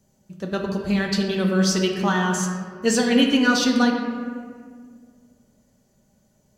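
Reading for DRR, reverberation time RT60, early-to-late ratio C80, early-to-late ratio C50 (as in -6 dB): 0.5 dB, 1.9 s, 4.5 dB, 3.5 dB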